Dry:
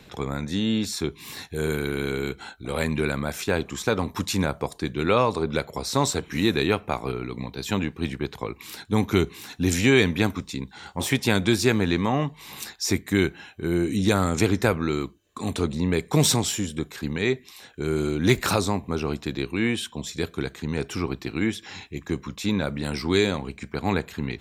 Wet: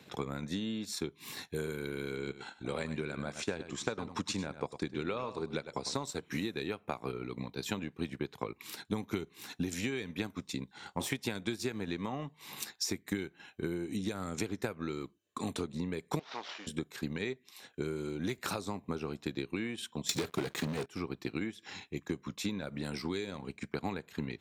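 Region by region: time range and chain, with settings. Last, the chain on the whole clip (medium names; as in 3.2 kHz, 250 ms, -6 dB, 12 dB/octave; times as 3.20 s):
2.16–5.95 s: low-pass 8.4 kHz 24 dB/octave + delay 101 ms -10.5 dB
16.19–16.67 s: CVSD coder 32 kbps + high-pass 700 Hz + distance through air 89 m
20.09–20.86 s: high-pass 62 Hz 6 dB/octave + waveshaping leveller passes 5
whole clip: high-pass 120 Hz 12 dB/octave; compression 6:1, threshold -27 dBFS; transient shaper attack +4 dB, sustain -7 dB; trim -6.5 dB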